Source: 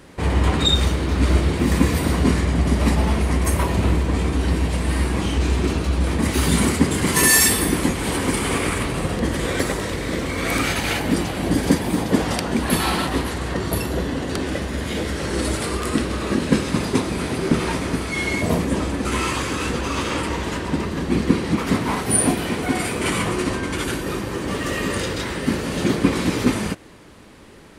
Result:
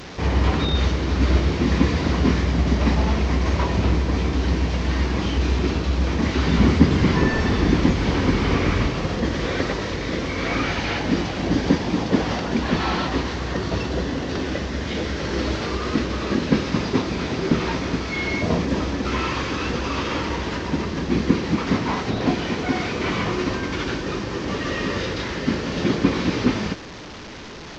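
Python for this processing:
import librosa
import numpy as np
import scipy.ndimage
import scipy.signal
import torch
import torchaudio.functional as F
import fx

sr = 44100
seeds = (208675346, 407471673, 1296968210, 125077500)

y = fx.delta_mod(x, sr, bps=32000, step_db=-30.0)
y = fx.low_shelf(y, sr, hz=220.0, db=8.0, at=(6.58, 8.9))
y = y * 10.0 ** (-1.0 / 20.0)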